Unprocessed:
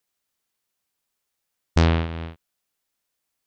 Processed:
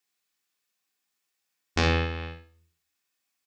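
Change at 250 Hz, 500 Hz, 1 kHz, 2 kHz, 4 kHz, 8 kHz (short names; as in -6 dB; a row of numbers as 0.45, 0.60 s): -6.0 dB, -2.0 dB, -1.5 dB, +2.5 dB, +1.5 dB, n/a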